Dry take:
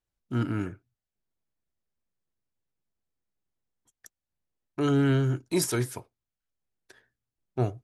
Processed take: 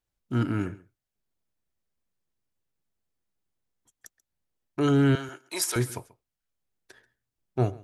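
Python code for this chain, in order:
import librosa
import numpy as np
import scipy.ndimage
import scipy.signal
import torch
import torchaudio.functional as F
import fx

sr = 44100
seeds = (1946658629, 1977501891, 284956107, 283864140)

y = fx.highpass(x, sr, hz=760.0, slope=12, at=(5.15, 5.76))
y = y + 10.0 ** (-21.0 / 20.0) * np.pad(y, (int(136 * sr / 1000.0), 0))[:len(y)]
y = y * librosa.db_to_amplitude(2.0)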